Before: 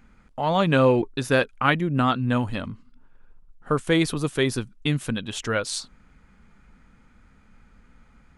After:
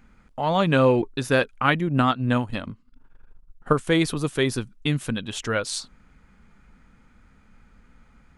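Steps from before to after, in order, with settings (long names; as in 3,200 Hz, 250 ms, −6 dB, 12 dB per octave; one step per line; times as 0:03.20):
0:01.87–0:03.73: transient designer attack +5 dB, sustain −9 dB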